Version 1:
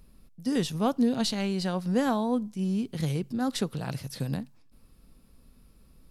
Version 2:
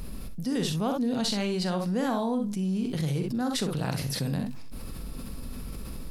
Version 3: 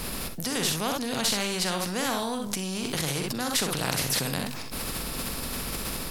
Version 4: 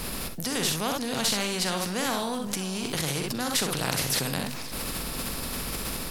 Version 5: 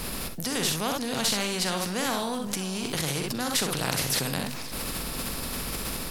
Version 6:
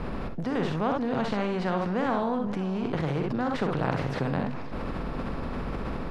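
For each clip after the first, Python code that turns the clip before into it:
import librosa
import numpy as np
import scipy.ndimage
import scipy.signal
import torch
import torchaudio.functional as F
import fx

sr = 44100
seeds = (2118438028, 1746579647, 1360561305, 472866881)

y1 = fx.room_early_taps(x, sr, ms=(44, 64), db=(-9.5, -10.0))
y1 = fx.env_flatten(y1, sr, amount_pct=70)
y1 = F.gain(torch.from_numpy(y1), -5.5).numpy()
y2 = fx.spectral_comp(y1, sr, ratio=2.0)
y2 = F.gain(torch.from_numpy(y2), 5.5).numpy()
y3 = y2 + 10.0 ** (-17.0 / 20.0) * np.pad(y2, (int(523 * sr / 1000.0), 0))[:len(y2)]
y4 = y3
y5 = scipy.signal.sosfilt(scipy.signal.butter(2, 1300.0, 'lowpass', fs=sr, output='sos'), y4)
y5 = F.gain(torch.from_numpy(y5), 3.5).numpy()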